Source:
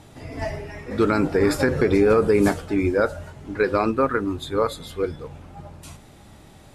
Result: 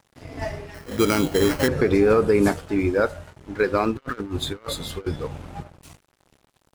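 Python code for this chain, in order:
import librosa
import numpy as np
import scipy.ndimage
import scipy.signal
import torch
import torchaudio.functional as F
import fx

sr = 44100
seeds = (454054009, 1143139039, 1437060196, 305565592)

y = fx.sample_hold(x, sr, seeds[0], rate_hz=3600.0, jitter_pct=0, at=(0.74, 1.68))
y = fx.over_compress(y, sr, threshold_db=-29.0, ratio=-0.5, at=(3.95, 5.62), fade=0.02)
y = np.sign(y) * np.maximum(np.abs(y) - 10.0 ** (-42.5 / 20.0), 0.0)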